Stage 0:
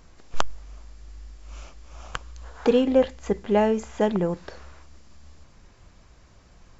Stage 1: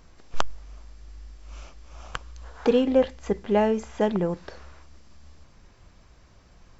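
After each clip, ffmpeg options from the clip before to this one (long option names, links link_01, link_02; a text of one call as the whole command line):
ffmpeg -i in.wav -af "bandreject=frequency=6900:width=14,volume=-1dB" out.wav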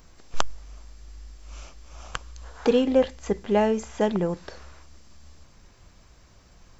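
ffmpeg -i in.wav -af "highshelf=frequency=6700:gain=11" out.wav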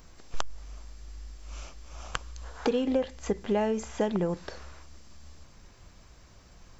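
ffmpeg -i in.wav -af "acompressor=threshold=-23dB:ratio=6" out.wav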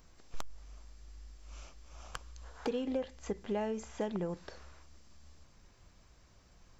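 ffmpeg -i in.wav -af "volume=17dB,asoftclip=hard,volume=-17dB,volume=-8dB" out.wav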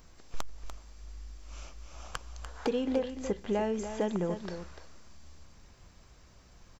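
ffmpeg -i in.wav -af "aecho=1:1:294:0.335,volume=4.5dB" out.wav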